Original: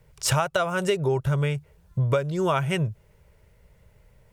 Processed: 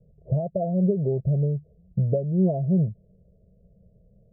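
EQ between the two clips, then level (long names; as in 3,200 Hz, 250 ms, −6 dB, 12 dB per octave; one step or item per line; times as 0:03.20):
Chebyshev low-pass with heavy ripple 700 Hz, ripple 3 dB
parametric band 190 Hz +12 dB 0.32 octaves
0.0 dB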